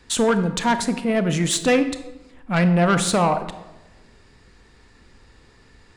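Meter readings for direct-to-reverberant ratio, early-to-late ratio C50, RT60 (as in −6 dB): 9.5 dB, 11.5 dB, 1.0 s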